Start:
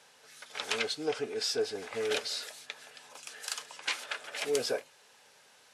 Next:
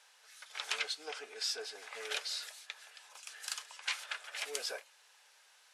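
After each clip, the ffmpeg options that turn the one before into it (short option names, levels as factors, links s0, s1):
-af "highpass=880,volume=0.708"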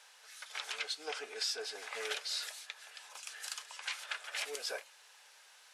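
-af "alimiter=level_in=1.78:limit=0.0631:level=0:latency=1:release=272,volume=0.562,volume=1.58"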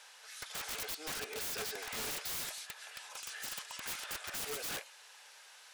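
-af "aeval=exprs='(mod(75*val(0)+1,2)-1)/75':c=same,volume=1.5"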